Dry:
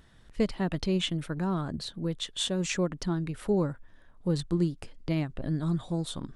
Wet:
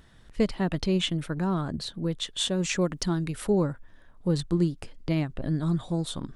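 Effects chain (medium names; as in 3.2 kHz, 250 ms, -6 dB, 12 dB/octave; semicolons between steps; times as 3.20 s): 2.81–3.47 s: treble shelf 3.6 kHz +8.5 dB; trim +2.5 dB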